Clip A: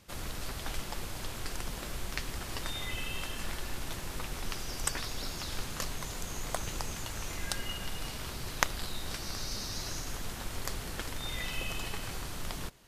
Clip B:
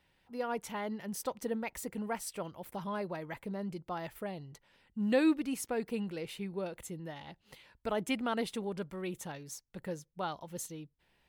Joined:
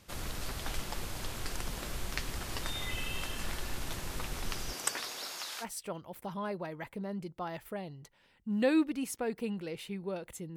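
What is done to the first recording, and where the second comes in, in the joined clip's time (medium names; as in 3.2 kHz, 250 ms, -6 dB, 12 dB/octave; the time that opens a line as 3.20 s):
clip A
4.72–5.66 s: high-pass 230 Hz -> 970 Hz
5.63 s: go over to clip B from 2.13 s, crossfade 0.06 s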